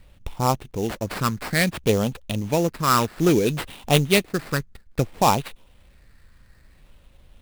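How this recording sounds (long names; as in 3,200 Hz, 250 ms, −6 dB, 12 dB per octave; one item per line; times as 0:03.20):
phaser sweep stages 6, 0.59 Hz, lowest notch 720–1,800 Hz
aliases and images of a low sample rate 6,400 Hz, jitter 20%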